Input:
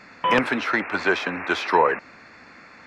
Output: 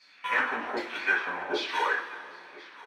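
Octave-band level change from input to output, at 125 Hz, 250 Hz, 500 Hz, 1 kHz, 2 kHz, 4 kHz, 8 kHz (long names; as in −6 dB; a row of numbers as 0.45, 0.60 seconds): below −20 dB, −13.0 dB, −11.0 dB, −8.5 dB, −3.5 dB, −4.5 dB, −6.0 dB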